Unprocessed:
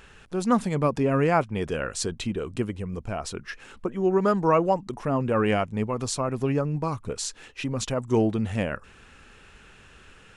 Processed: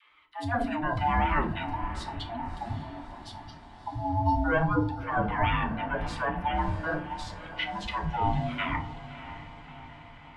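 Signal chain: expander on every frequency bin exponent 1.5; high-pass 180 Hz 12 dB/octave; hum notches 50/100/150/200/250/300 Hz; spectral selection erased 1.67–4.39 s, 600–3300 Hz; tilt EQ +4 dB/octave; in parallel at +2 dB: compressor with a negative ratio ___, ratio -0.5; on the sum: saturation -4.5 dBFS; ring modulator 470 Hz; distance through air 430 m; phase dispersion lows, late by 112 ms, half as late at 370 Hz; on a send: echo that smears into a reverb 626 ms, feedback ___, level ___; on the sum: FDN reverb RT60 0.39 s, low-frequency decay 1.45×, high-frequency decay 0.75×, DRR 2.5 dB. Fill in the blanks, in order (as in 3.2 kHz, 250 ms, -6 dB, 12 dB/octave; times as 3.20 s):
-31 dBFS, 61%, -13.5 dB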